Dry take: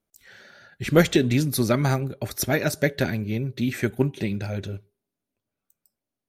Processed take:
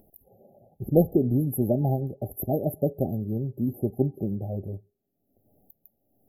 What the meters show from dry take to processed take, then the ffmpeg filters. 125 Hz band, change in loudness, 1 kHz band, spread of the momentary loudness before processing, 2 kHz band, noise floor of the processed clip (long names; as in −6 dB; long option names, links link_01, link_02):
−2.0 dB, −2.5 dB, −6.0 dB, 11 LU, below −40 dB, −76 dBFS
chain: -af "acompressor=mode=upward:threshold=-38dB:ratio=2.5,afftfilt=real='re*(1-between(b*sr/4096,830,11000))':imag='im*(1-between(b*sr/4096,830,11000))':win_size=4096:overlap=0.75,volume=-2dB"